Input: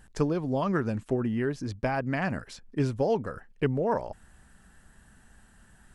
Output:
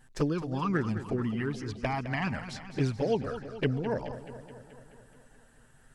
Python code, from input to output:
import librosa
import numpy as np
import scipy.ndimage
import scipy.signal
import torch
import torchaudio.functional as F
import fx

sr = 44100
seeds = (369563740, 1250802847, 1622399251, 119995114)

y = fx.dynamic_eq(x, sr, hz=3400.0, q=0.81, threshold_db=-51.0, ratio=4.0, max_db=6)
y = fx.env_flanger(y, sr, rest_ms=8.3, full_db=-20.0)
y = fx.echo_warbled(y, sr, ms=214, feedback_pct=63, rate_hz=2.8, cents=93, wet_db=-12.0)